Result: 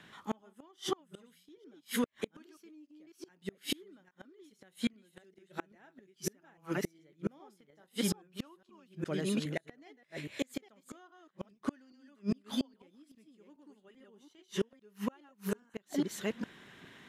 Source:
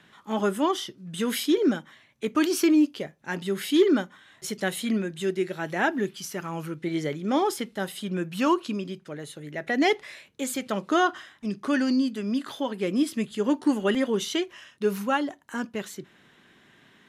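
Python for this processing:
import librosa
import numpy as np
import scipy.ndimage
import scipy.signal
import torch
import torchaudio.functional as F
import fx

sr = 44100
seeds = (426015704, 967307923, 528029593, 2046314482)

y = fx.reverse_delay(x, sr, ms=411, wet_db=-2.5)
y = fx.dynamic_eq(y, sr, hz=890.0, q=0.88, threshold_db=-36.0, ratio=4.0, max_db=5, at=(7.39, 8.47))
y = fx.gate_flip(y, sr, shuts_db=-20.0, range_db=-36)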